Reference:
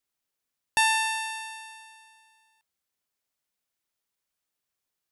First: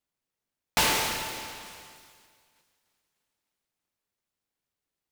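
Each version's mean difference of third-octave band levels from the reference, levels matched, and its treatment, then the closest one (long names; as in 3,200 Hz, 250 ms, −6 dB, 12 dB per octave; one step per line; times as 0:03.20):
16.5 dB: tilt shelving filter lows +3.5 dB
delay with a high-pass on its return 298 ms, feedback 56%, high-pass 1,700 Hz, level −19.5 dB
short delay modulated by noise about 1,500 Hz, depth 0.24 ms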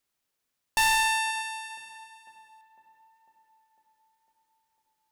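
5.0 dB: high-shelf EQ 4,600 Hz −2 dB
hard clipping −24.5 dBFS, distortion −8 dB
on a send: tape delay 501 ms, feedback 74%, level −16.5 dB, low-pass 1,300 Hz
on the sum: level +4.5 dB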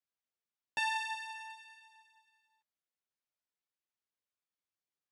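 3.0 dB: high-pass filter 91 Hz
multi-voice chorus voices 2, 0.48 Hz, delay 11 ms, depth 2.5 ms
high-frequency loss of the air 85 metres
level −6.5 dB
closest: third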